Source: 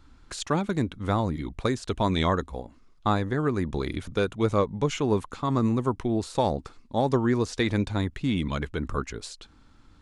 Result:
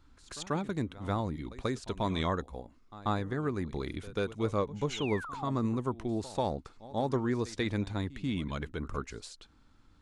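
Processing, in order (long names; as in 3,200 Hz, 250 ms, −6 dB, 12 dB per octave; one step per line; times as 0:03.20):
echo ahead of the sound 138 ms −17.5 dB
sound drawn into the spectrogram fall, 0:04.92–0:05.51, 580–4,200 Hz −35 dBFS
level −7 dB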